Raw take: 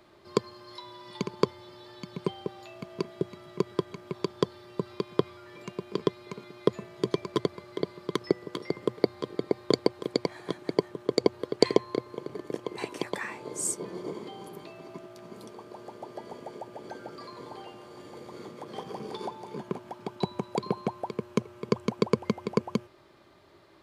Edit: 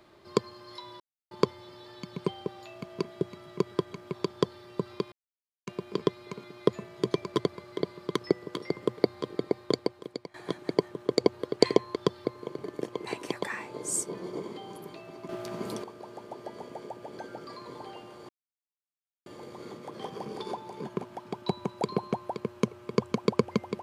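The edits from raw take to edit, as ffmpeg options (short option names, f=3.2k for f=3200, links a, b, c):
-filter_complex "[0:a]asplit=11[a][b][c][d][e][f][g][h][i][j][k];[a]atrim=end=1,asetpts=PTS-STARTPTS,afade=t=out:st=0.996:d=0.004:c=hsin[l];[b]atrim=start=1:end=1.31,asetpts=PTS-STARTPTS,volume=0[m];[c]atrim=start=1.31:end=5.12,asetpts=PTS-STARTPTS,afade=t=in:d=0.004:c=hsin,afade=t=out:st=3.806:d=0.004:c=hsin[n];[d]atrim=start=5.12:end=5.67,asetpts=PTS-STARTPTS,volume=0[o];[e]atrim=start=5.67:end=10.34,asetpts=PTS-STARTPTS,afade=t=in:d=0.004:c=hsin,afade=t=out:st=3.74:d=0.93:silence=0.125893[p];[f]atrim=start=10.34:end=11.962,asetpts=PTS-STARTPTS,afade=t=in:d=0.004:c=hsin:silence=0.125893[q];[g]atrim=start=4.318:end=4.612[r];[h]atrim=start=11.958:end=15.002[s];[i]atrim=start=14.998:end=15.552,asetpts=PTS-STARTPTS,volume=9.5dB[t];[j]atrim=start=15.548:end=18,asetpts=PTS-STARTPTS,afade=t=out:st=2.448:d=0.004:c=hsin,apad=pad_dur=0.97[u];[k]atrim=start=18,asetpts=PTS-STARTPTS,afade=t=in:d=0.004:c=hsin[v];[l][m][n][o][p][q]concat=n=6:v=0:a=1[w];[w][r]acrossfade=d=0.004:c1=hsin:c2=hsin[x];[x][s]acrossfade=d=0.004:c1=hsin:c2=hsin[y];[y][t]acrossfade=d=0.004:c1=hsin:c2=hsin[z];[u][v]concat=n=2:v=0:a=1[aa];[z][aa]acrossfade=d=0.004:c1=hsin:c2=hsin"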